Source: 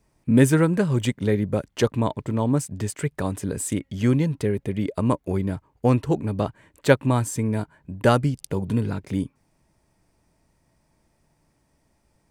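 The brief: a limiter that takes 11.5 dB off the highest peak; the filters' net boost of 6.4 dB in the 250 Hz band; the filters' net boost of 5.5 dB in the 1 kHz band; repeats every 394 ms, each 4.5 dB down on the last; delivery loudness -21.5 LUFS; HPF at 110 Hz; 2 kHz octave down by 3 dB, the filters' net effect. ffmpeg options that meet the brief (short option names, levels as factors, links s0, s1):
-af "highpass=110,equalizer=f=250:t=o:g=7.5,equalizer=f=1000:t=o:g=8.5,equalizer=f=2000:t=o:g=-8.5,alimiter=limit=0.376:level=0:latency=1,aecho=1:1:394|788|1182|1576|1970|2364|2758|3152|3546:0.596|0.357|0.214|0.129|0.0772|0.0463|0.0278|0.0167|0.01,volume=0.891"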